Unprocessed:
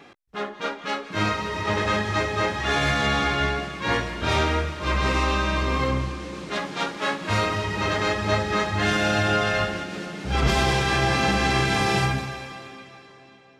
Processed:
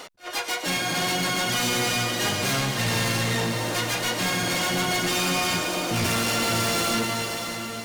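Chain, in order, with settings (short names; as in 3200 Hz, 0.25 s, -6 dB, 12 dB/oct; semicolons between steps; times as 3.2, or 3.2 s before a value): dynamic EQ 570 Hz, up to -5 dB, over -42 dBFS, Q 3.3; in parallel at +1 dB: compressor 4:1, threshold -39 dBFS, peak gain reduction 18.5 dB; on the sum: harmoniser +7 st -7 dB, +12 st -6 dB; hard clip -23 dBFS, distortion -7 dB; on a send: diffused feedback echo 0.982 s, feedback 47%, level -7.5 dB; on the sum: speed mistake 45 rpm record played at 78 rpm; attack slew limiter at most 300 dB/s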